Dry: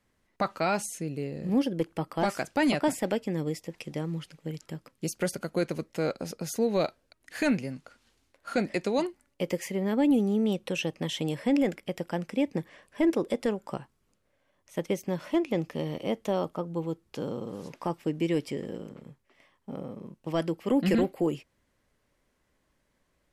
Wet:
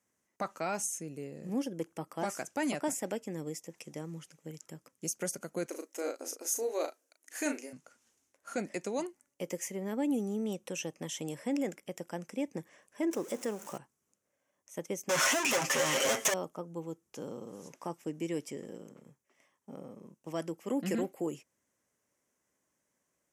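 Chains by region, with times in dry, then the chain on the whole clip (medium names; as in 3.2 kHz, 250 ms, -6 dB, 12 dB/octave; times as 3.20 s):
5.66–7.73 s: brick-wall FIR high-pass 250 Hz + treble shelf 7.4 kHz +5.5 dB + doubling 36 ms -7 dB
13.11–13.78 s: jump at every zero crossing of -38 dBFS + bass shelf 68 Hz -11.5 dB
15.09–16.34 s: overdrive pedal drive 40 dB, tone 3.5 kHz, clips at -17 dBFS + tilt shelf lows -5.5 dB, about 690 Hz + comb 7.5 ms, depth 76%
whole clip: Bessel high-pass 170 Hz, order 2; resonant high shelf 5.2 kHz +6 dB, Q 3; trim -7 dB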